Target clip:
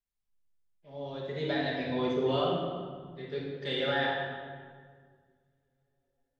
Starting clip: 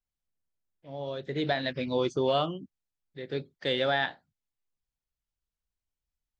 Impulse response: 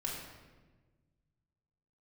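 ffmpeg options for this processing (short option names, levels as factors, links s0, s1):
-filter_complex "[0:a]asettb=1/sr,asplit=3[s0][s1][s2];[s0]atrim=end=1.894[s3];[s1]atrim=start=1.89:end=2.32,asetpts=PTS-STARTPTS,afade=t=in:d=0.004:c=qsin,afade=t=out:st=0.426:d=0.004:c=qsin,lowpass=4000[s4];[s2]atrim=start=2.316[s5];[s3][s4]acrossfade=d=0.004:c1=hsin:c2=qsin[s6];[s6][s5]acrossfade=d=0.004:c1=qsin:c2=hsin[s7];[1:a]atrim=start_sample=2205,asetrate=29547,aresample=44100[s8];[s7][s8]afir=irnorm=-1:irlink=0,volume=0.473"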